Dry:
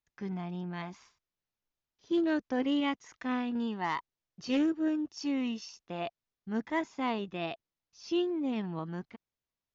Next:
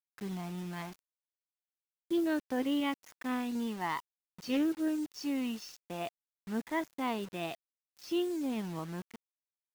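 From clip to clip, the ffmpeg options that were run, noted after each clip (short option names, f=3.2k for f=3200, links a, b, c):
-af "acrusher=bits=7:mix=0:aa=0.000001,volume=-2dB"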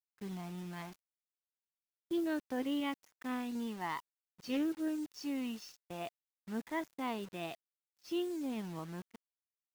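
-af "agate=range=-14dB:threshold=-49dB:ratio=16:detection=peak,volume=-4dB"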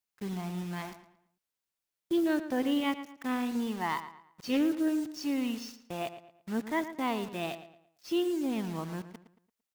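-filter_complex "[0:a]asplit=2[a][b];[b]adelay=113,lowpass=f=3.8k:p=1,volume=-12dB,asplit=2[c][d];[d]adelay=113,lowpass=f=3.8k:p=1,volume=0.36,asplit=2[e][f];[f]adelay=113,lowpass=f=3.8k:p=1,volume=0.36,asplit=2[g][h];[h]adelay=113,lowpass=f=3.8k:p=1,volume=0.36[i];[a][c][e][g][i]amix=inputs=5:normalize=0,volume=6.5dB"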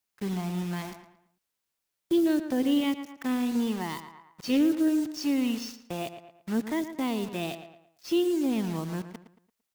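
-filter_complex "[0:a]acrossover=split=490|3000[a][b][c];[b]acompressor=threshold=-43dB:ratio=6[d];[a][d][c]amix=inputs=3:normalize=0,volume=5dB"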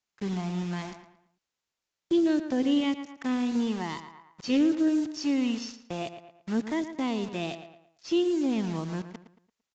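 -af "aresample=16000,aresample=44100"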